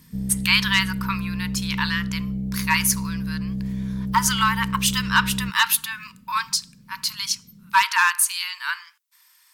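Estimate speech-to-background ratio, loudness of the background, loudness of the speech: 6.5 dB, -28.5 LUFS, -22.0 LUFS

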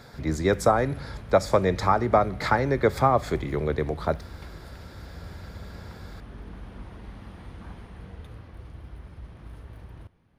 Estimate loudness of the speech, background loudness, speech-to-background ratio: -24.5 LUFS, -42.5 LUFS, 18.0 dB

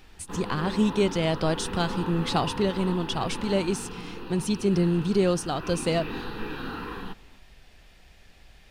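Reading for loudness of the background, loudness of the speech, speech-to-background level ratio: -36.5 LUFS, -26.5 LUFS, 10.0 dB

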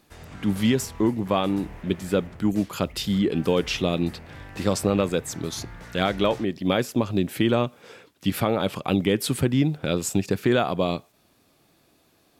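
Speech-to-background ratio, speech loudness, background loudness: 18.5 dB, -25.0 LUFS, -43.5 LUFS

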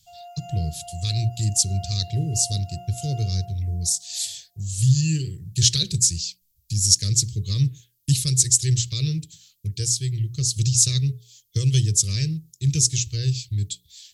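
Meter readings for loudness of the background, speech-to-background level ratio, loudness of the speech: -42.0 LUFS, 20.0 dB, -22.0 LUFS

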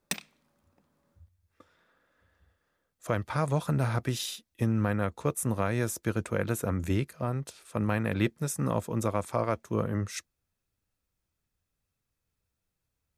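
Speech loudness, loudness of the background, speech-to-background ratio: -30.5 LUFS, -37.0 LUFS, 6.5 dB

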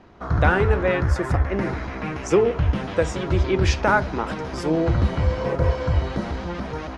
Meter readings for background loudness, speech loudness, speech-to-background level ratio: -25.0 LUFS, -24.0 LUFS, 1.0 dB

